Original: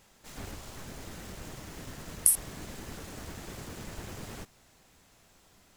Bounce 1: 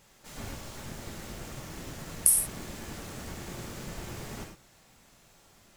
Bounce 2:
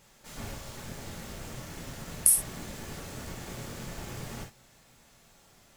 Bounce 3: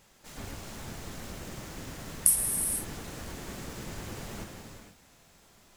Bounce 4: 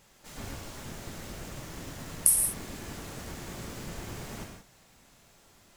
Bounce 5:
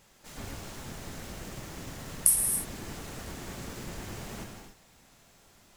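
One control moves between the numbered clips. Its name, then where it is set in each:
gated-style reverb, gate: 130 ms, 80 ms, 510 ms, 200 ms, 310 ms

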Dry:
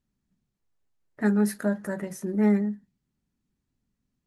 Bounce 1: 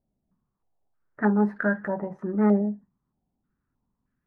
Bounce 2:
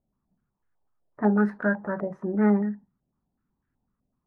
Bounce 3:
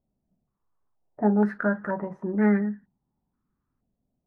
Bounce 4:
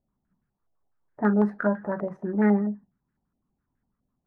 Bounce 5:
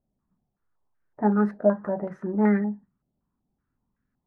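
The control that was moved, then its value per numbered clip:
step-sequenced low-pass, rate: 3.2 Hz, 8 Hz, 2.1 Hz, 12 Hz, 5.3 Hz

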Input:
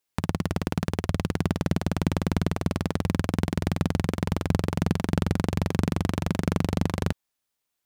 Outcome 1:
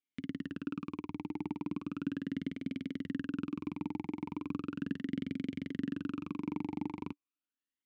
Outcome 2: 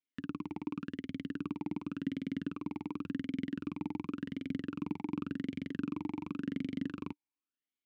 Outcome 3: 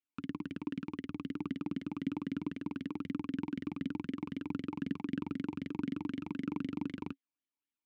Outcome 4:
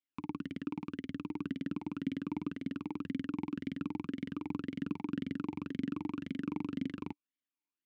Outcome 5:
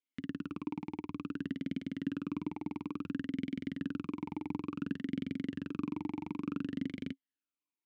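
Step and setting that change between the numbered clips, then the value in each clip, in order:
talking filter, rate: 0.37 Hz, 0.9 Hz, 3.9 Hz, 1.9 Hz, 0.57 Hz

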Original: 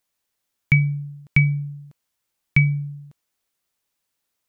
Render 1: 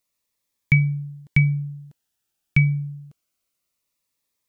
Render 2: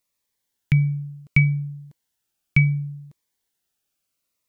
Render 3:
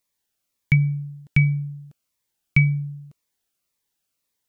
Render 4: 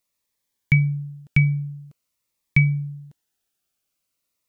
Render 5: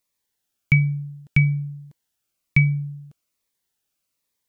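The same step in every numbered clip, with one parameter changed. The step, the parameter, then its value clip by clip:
Shepard-style phaser, rate: 0.26 Hz, 0.69 Hz, 1.9 Hz, 0.46 Hz, 1.2 Hz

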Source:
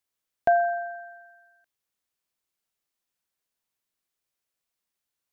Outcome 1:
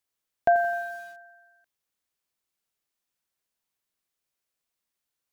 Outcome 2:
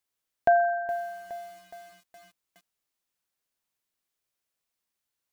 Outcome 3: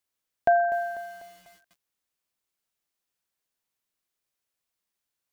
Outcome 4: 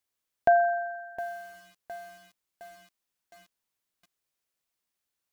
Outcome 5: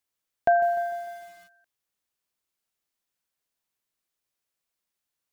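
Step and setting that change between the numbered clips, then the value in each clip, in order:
bit-crushed delay, time: 86 ms, 417 ms, 247 ms, 712 ms, 150 ms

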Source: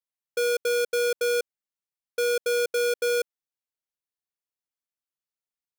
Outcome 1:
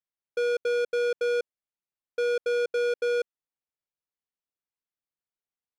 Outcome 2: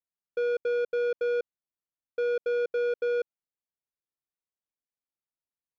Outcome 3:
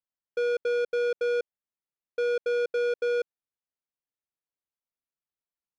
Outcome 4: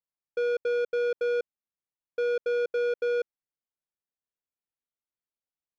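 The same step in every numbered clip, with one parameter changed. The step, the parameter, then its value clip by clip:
tape spacing loss, at 10 kHz: 20 dB, 45 dB, 29 dB, 37 dB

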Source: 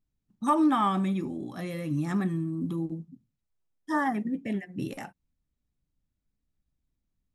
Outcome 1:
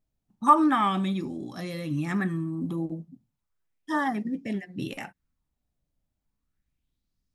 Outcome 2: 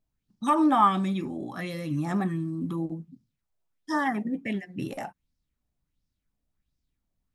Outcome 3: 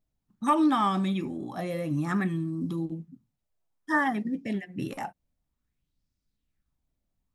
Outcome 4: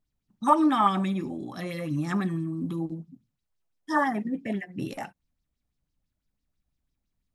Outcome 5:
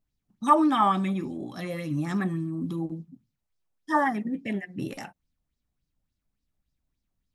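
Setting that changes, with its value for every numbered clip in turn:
sweeping bell, rate: 0.34 Hz, 1.4 Hz, 0.57 Hz, 6 Hz, 3.5 Hz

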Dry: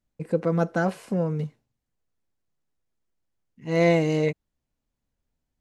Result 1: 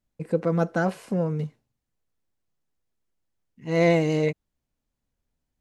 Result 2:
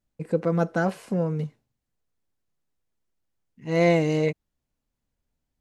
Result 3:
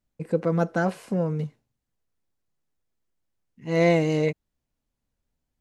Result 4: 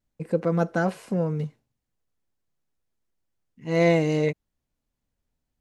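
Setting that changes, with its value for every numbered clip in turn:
vibrato, rate: 11 Hz, 2.4 Hz, 5.2 Hz, 0.66 Hz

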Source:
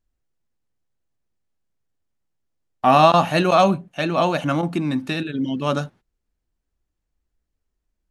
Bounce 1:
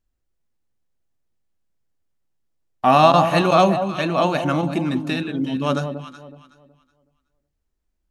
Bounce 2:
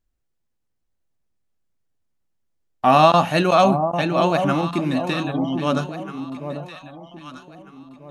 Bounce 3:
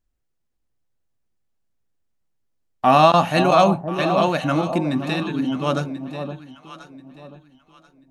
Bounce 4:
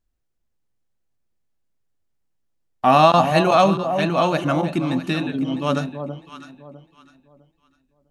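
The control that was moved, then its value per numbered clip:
echo whose repeats swap between lows and highs, time: 186 ms, 795 ms, 518 ms, 327 ms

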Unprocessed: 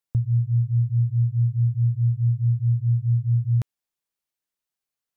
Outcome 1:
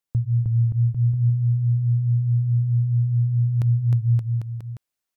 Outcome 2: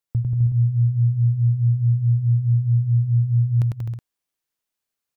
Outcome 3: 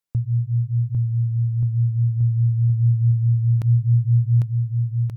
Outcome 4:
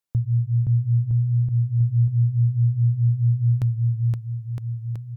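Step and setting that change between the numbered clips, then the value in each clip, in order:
bouncing-ball echo, first gap: 310 ms, 100 ms, 800 ms, 520 ms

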